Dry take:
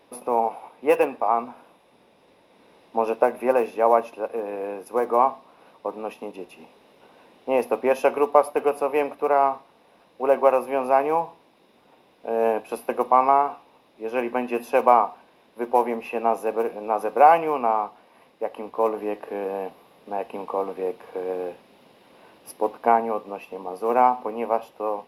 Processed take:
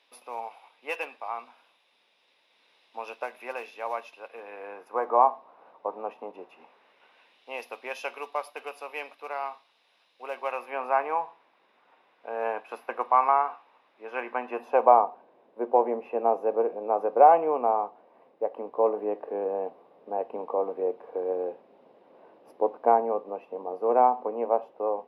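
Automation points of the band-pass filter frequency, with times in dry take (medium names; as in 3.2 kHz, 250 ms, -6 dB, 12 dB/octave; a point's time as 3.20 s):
band-pass filter, Q 1.1
4.14 s 3.5 kHz
5.20 s 830 Hz
6.31 s 830 Hz
7.51 s 3.7 kHz
10.40 s 3.7 kHz
10.83 s 1.5 kHz
14.25 s 1.5 kHz
15.06 s 530 Hz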